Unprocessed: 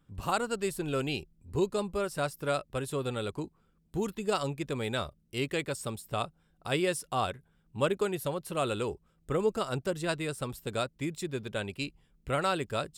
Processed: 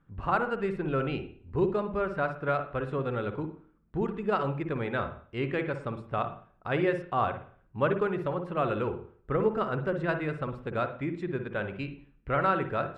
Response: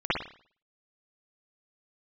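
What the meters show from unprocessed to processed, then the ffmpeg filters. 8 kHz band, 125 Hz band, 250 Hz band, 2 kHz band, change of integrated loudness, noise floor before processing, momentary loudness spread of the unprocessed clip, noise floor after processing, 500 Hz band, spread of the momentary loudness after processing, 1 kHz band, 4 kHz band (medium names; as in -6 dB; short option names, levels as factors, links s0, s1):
under -25 dB, +3.0 dB, +2.5 dB, +3.0 dB, +2.0 dB, -70 dBFS, 8 LU, -64 dBFS, +2.0 dB, 8 LU, +4.0 dB, -9.5 dB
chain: -filter_complex "[0:a]lowpass=f=1700:t=q:w=1.5,asplit=2[s0][s1];[1:a]atrim=start_sample=2205,lowshelf=f=400:g=8[s2];[s1][s2]afir=irnorm=-1:irlink=0,volume=0.0794[s3];[s0][s3]amix=inputs=2:normalize=0"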